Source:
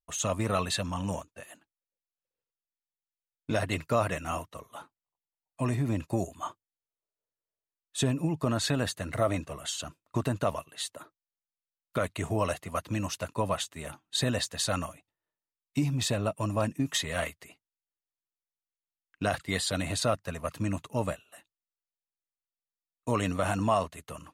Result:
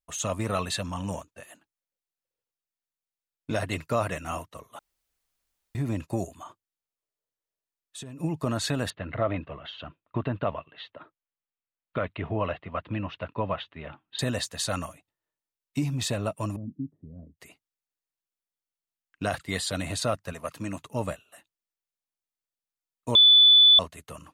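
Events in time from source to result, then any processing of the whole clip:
4.79–5.75 s: room tone
6.34–8.20 s: compression, threshold -38 dBFS
8.90–14.19 s: steep low-pass 3.4 kHz
16.56–17.40 s: four-pole ladder low-pass 320 Hz, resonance 35%
20.33–20.82 s: high-pass 200 Hz 6 dB/octave
23.15–23.79 s: bleep 3.48 kHz -12 dBFS

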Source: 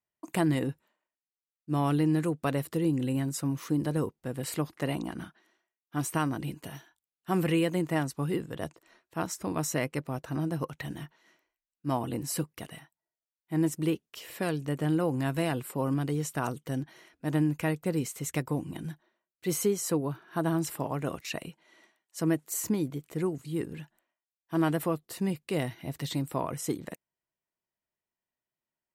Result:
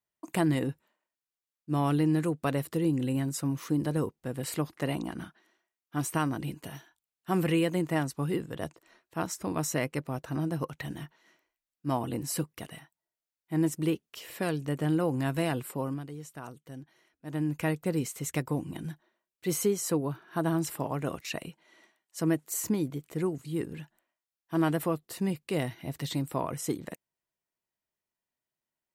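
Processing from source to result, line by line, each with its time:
15.68–17.62 s: dip -11.5 dB, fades 0.38 s

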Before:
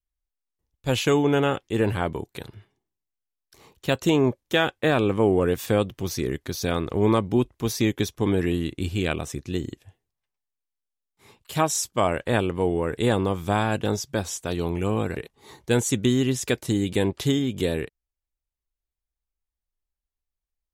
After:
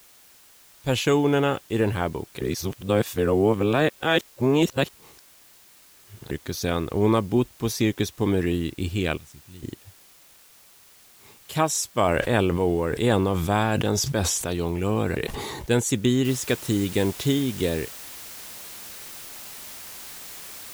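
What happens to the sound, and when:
2.41–6.31 s: reverse
9.17–9.63 s: amplifier tone stack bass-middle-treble 6-0-2
11.93–15.70 s: decay stretcher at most 21 dB/s
16.25 s: noise floor step -53 dB -40 dB

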